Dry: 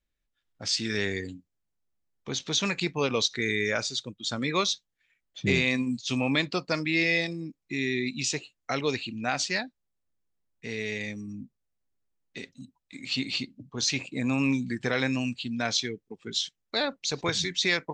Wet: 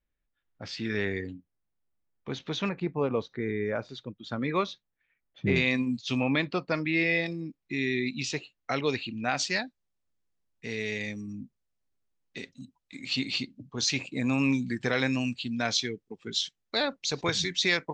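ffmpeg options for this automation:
-af "asetnsamples=n=441:p=0,asendcmd='2.69 lowpass f 1100;3.89 lowpass f 1900;5.56 lowpass f 4300;6.23 lowpass f 2800;7.26 lowpass f 4400;9.37 lowpass f 7800',lowpass=2400"

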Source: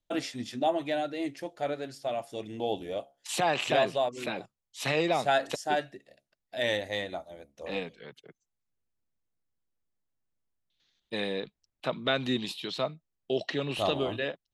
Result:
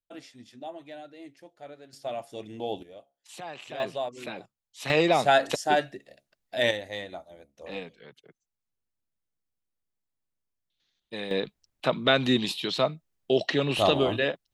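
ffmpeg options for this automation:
-af "asetnsamples=n=441:p=0,asendcmd='1.93 volume volume -1.5dB;2.83 volume volume -13dB;3.8 volume volume -3.5dB;4.9 volume volume 5dB;6.71 volume volume -3dB;11.31 volume volume 6dB',volume=0.237"

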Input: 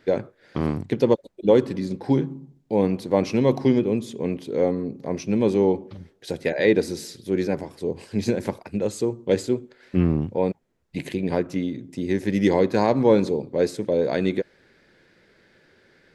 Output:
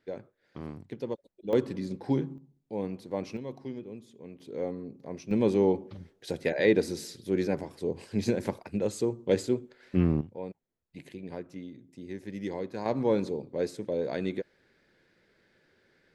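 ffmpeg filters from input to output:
-af "asetnsamples=n=441:p=0,asendcmd='1.53 volume volume -7dB;2.38 volume volume -13dB;3.37 volume volume -20dB;4.4 volume volume -12dB;5.31 volume volume -4.5dB;10.21 volume volume -16dB;12.86 volume volume -9dB',volume=0.158"

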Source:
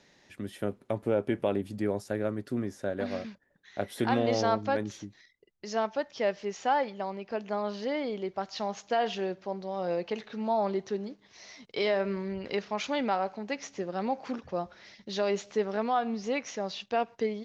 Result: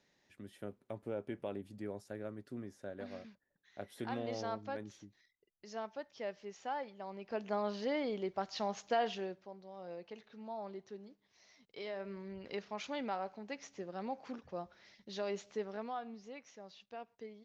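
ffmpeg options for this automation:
-af "volume=1.26,afade=t=in:st=6.99:d=0.47:silence=0.354813,afade=t=out:st=8.9:d=0.61:silence=0.251189,afade=t=in:st=11.86:d=0.69:silence=0.501187,afade=t=out:st=15.51:d=0.8:silence=0.354813"

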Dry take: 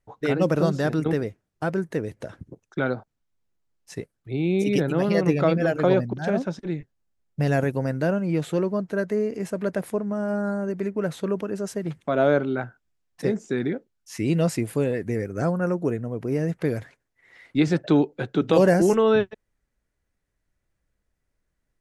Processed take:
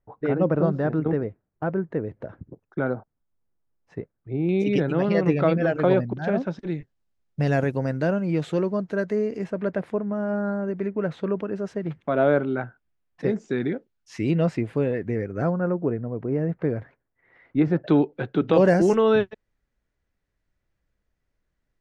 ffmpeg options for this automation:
-af "asetnsamples=n=441:p=0,asendcmd='4.49 lowpass f 3400;6.59 lowpass f 5800;9.44 lowpass f 2800;13.29 lowpass f 4500;14.31 lowpass f 2700;15.55 lowpass f 1500;17.84 lowpass f 3100;18.65 lowpass f 5400',lowpass=1400"

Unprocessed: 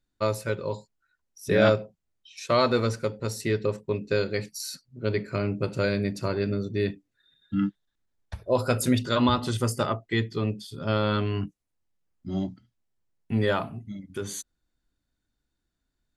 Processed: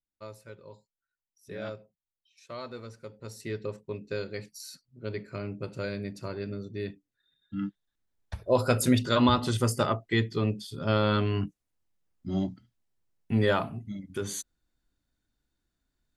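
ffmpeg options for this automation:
-af "afade=t=in:st=2.95:d=0.62:silence=0.334965,afade=t=in:st=7.54:d=0.86:silence=0.375837"

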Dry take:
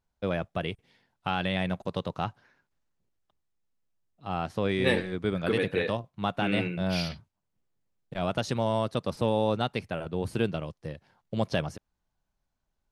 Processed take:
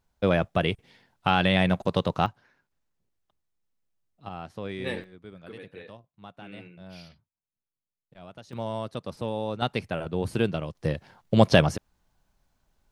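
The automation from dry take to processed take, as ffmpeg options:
-af "asetnsamples=n=441:p=0,asendcmd='2.26 volume volume -0.5dB;4.29 volume volume -7.5dB;5.04 volume volume -16.5dB;8.53 volume volume -5dB;9.62 volume volume 2.5dB;10.75 volume volume 10.5dB',volume=2.24"

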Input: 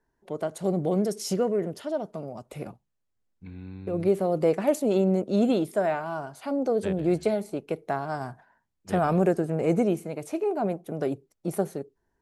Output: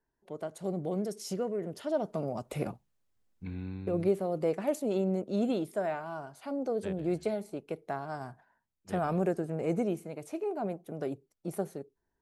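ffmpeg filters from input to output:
-af "volume=1.41,afade=t=in:st=1.61:d=0.69:silence=0.281838,afade=t=out:st=3.53:d=0.67:silence=0.316228"

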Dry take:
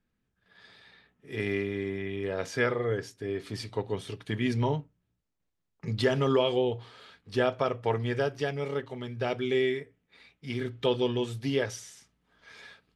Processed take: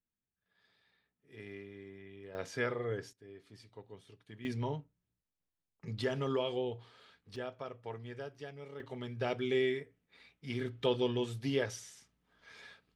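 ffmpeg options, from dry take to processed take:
-af "asetnsamples=n=441:p=0,asendcmd='2.35 volume volume -7.5dB;3.13 volume volume -19.5dB;4.45 volume volume -9dB;7.36 volume volume -15.5dB;8.8 volume volume -4.5dB',volume=0.133"

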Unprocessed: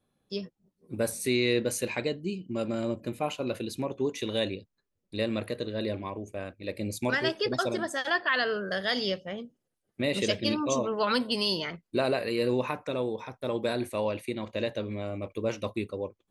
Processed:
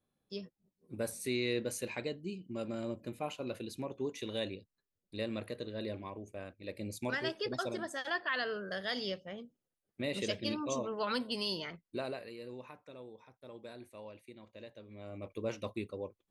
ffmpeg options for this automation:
-af "volume=1.68,afade=t=out:st=11.7:d=0.68:silence=0.266073,afade=t=in:st=14.88:d=0.44:silence=0.237137"

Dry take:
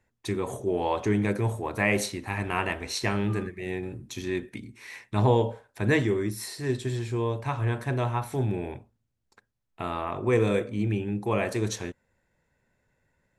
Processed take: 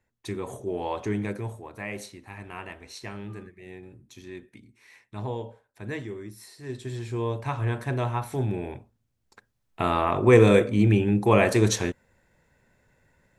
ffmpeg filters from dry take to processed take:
-af "volume=5.62,afade=t=out:st=1.16:d=0.53:silence=0.421697,afade=t=in:st=6.57:d=0.74:silence=0.281838,afade=t=in:st=8.73:d=1.14:silence=0.421697"

